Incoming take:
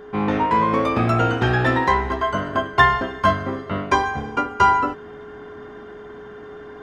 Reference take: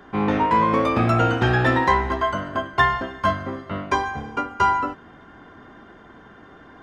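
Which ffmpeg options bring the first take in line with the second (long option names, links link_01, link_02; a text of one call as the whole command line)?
ffmpeg -i in.wav -af "bandreject=frequency=420:width=30,asetnsamples=nb_out_samples=441:pad=0,asendcmd='2.34 volume volume -3.5dB',volume=0dB" out.wav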